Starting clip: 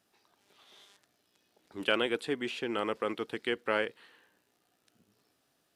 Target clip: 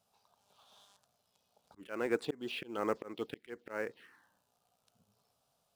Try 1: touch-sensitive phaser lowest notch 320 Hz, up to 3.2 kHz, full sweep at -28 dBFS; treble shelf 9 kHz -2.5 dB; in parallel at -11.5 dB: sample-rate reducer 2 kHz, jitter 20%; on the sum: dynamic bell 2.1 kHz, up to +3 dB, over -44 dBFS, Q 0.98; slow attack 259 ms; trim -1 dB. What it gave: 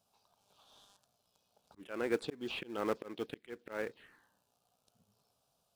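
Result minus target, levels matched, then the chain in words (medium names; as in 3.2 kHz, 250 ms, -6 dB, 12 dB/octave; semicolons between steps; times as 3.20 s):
sample-rate reducer: distortion +10 dB
touch-sensitive phaser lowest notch 320 Hz, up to 3.2 kHz, full sweep at -28 dBFS; treble shelf 9 kHz -2.5 dB; in parallel at -11.5 dB: sample-rate reducer 7.3 kHz, jitter 20%; on the sum: dynamic bell 2.1 kHz, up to +3 dB, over -44 dBFS, Q 0.98; slow attack 259 ms; trim -1 dB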